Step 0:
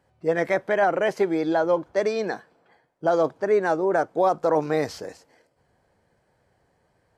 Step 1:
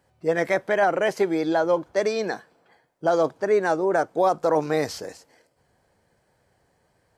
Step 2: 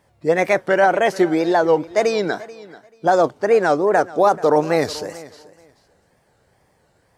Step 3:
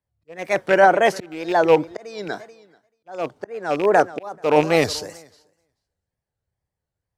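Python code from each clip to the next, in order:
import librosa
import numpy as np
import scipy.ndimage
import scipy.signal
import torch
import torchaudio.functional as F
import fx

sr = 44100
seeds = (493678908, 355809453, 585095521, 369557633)

y1 = fx.high_shelf(x, sr, hz=3900.0, db=6.5)
y2 = fx.wow_flutter(y1, sr, seeds[0], rate_hz=2.1, depth_cents=150.0)
y2 = fx.echo_feedback(y2, sr, ms=435, feedback_pct=19, wet_db=-19)
y2 = y2 * librosa.db_to_amplitude(5.5)
y3 = fx.rattle_buzz(y2, sr, strikes_db=-24.0, level_db=-17.0)
y3 = fx.auto_swell(y3, sr, attack_ms=399.0)
y3 = fx.band_widen(y3, sr, depth_pct=70)
y3 = y3 * librosa.db_to_amplitude(-1.0)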